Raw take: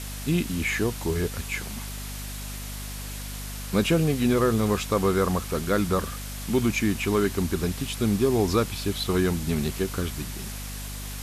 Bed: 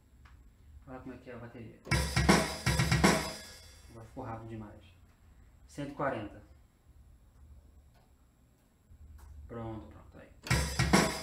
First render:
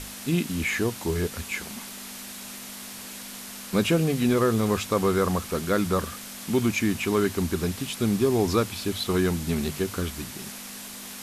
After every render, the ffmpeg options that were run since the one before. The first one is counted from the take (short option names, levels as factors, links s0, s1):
-af "bandreject=f=50:t=h:w=6,bandreject=f=100:t=h:w=6,bandreject=f=150:t=h:w=6"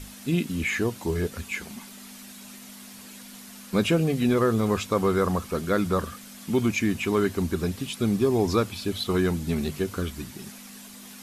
-af "afftdn=nr=8:nf=-40"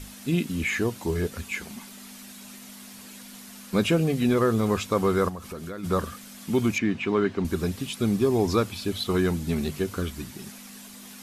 -filter_complex "[0:a]asplit=3[s0][s1][s2];[s0]afade=t=out:st=5.28:d=0.02[s3];[s1]acompressor=threshold=0.0224:ratio=6:attack=3.2:release=140:knee=1:detection=peak,afade=t=in:st=5.28:d=0.02,afade=t=out:st=5.83:d=0.02[s4];[s2]afade=t=in:st=5.83:d=0.02[s5];[s3][s4][s5]amix=inputs=3:normalize=0,asettb=1/sr,asplit=3[s6][s7][s8];[s6]atrim=end=6.784[s9];[s7]atrim=start=6.78:end=7.45,asetpts=PTS-STARTPTS,afade=t=in:d=0.004:c=qsin,afade=t=out:st=0.666:d=0.004:c=qsin,highpass=120,lowpass=3400[s10];[s8]atrim=start=7.446[s11];[s9][s10]acrossfade=d=0.004:c1=hsin:c2=qsin[s12];[s12][s11]acrossfade=d=0.004:c1=qsin:c2=hsin"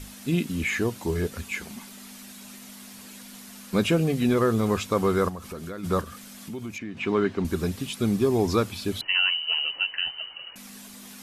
-filter_complex "[0:a]asettb=1/sr,asplit=3[s0][s1][s2];[s0]atrim=end=6.014[s3];[s1]atrim=start=6.01:end=6.97,asetpts=PTS-STARTPTS,afade=t=in:d=0.004:c=qsin,afade=t=out:st=0.956:d=0.004:c=qsin,acompressor=threshold=0.0141:ratio=2.5:attack=3.2:release=140:knee=1:detection=peak[s4];[s2]atrim=start=6.966[s5];[s3][s4]acrossfade=d=0.004:c1=hsin:c2=qsin[s6];[s6][s5]acrossfade=d=0.004:c1=qsin:c2=hsin,asettb=1/sr,asplit=3[s7][s8][s9];[s7]atrim=end=9.014[s10];[s8]atrim=start=9.01:end=10.56,asetpts=PTS-STARTPTS,afade=t=in:d=0.004:c=qsin,afade=t=out:st=1.546:d=0.004:c=qsin,lowpass=f=2600:t=q:w=0.5098,lowpass=f=2600:t=q:w=0.6013,lowpass=f=2600:t=q:w=0.9,lowpass=f=2600:t=q:w=2.563,afreqshift=-3100[s11];[s9]atrim=start=10.556[s12];[s10][s11]acrossfade=d=0.004:c1=hsin:c2=qsin[s13];[s13][s12]acrossfade=d=0.004:c1=qsin:c2=hsin"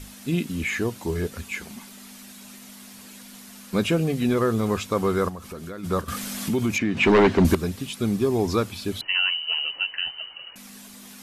-filter_complex "[0:a]asettb=1/sr,asplit=3[s0][s1][s2];[s0]atrim=end=6.084[s3];[s1]atrim=start=6.08:end=7.55,asetpts=PTS-STARTPTS,afade=t=in:d=0.004:c=qsin,afade=t=out:st=1.466:d=0.004:c=qsin,aeval=exprs='0.266*sin(PI/2*2.51*val(0)/0.266)':c=same[s4];[s2]atrim=start=7.546[s5];[s3][s4]acrossfade=d=0.004:c1=hsin:c2=qsin[s6];[s6][s5]acrossfade=d=0.004:c1=qsin:c2=hsin"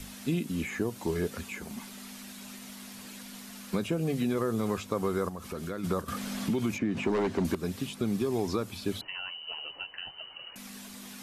-filter_complex "[0:a]alimiter=limit=0.158:level=0:latency=1:release=405,acrossover=split=120|1200|5600[s0][s1][s2][s3];[s0]acompressor=threshold=0.00447:ratio=4[s4];[s1]acompressor=threshold=0.0501:ratio=4[s5];[s2]acompressor=threshold=0.00708:ratio=4[s6];[s3]acompressor=threshold=0.00355:ratio=4[s7];[s4][s5][s6][s7]amix=inputs=4:normalize=0"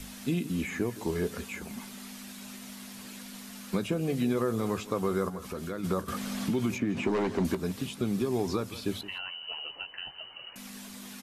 -filter_complex "[0:a]asplit=2[s0][s1];[s1]adelay=16,volume=0.2[s2];[s0][s2]amix=inputs=2:normalize=0,asplit=2[s3][s4];[s4]adelay=169.1,volume=0.158,highshelf=f=4000:g=-3.8[s5];[s3][s5]amix=inputs=2:normalize=0"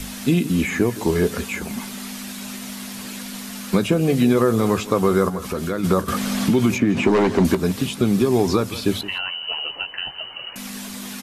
-af "volume=3.76"